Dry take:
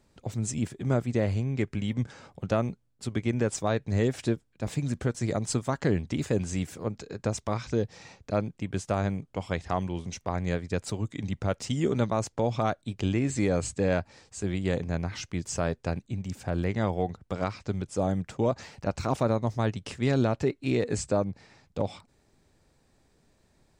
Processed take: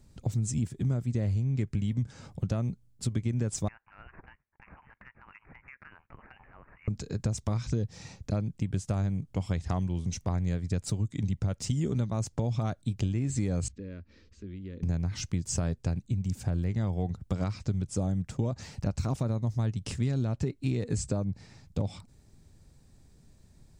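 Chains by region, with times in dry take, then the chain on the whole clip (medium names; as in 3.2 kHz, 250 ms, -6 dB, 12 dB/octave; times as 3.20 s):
3.68–6.88 s: high-pass 1.1 kHz 24 dB/octave + frequency inversion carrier 3.3 kHz + compression 2:1, threshold -51 dBFS
13.68–14.83 s: compression 2:1, threshold -48 dBFS + distance through air 280 m + static phaser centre 320 Hz, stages 4
whole clip: tone controls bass +14 dB, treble +8 dB; compression, threshold -23 dBFS; trim -3 dB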